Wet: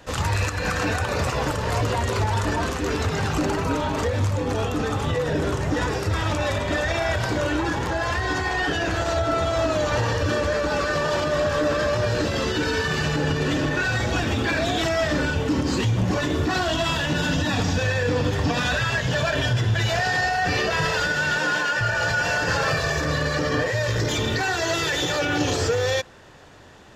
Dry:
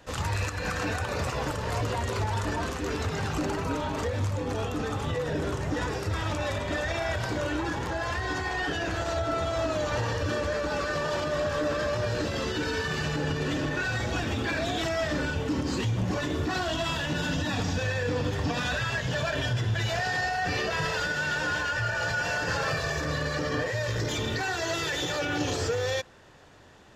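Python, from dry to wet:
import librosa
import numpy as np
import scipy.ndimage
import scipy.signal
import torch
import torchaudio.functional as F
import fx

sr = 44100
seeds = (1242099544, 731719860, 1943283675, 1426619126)

y = fx.highpass(x, sr, hz=150.0, slope=24, at=(21.37, 21.81))
y = y * librosa.db_to_amplitude(6.0)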